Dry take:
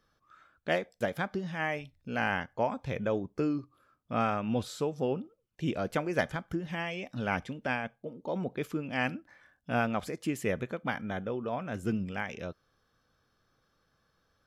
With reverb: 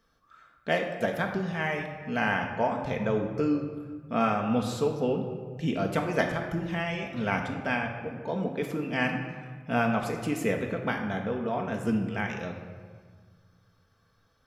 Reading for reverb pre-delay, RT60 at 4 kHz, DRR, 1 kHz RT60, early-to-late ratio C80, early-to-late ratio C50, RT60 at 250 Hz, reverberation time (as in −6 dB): 4 ms, 1.0 s, 1.5 dB, 1.6 s, 7.5 dB, 6.0 dB, 2.0 s, 1.6 s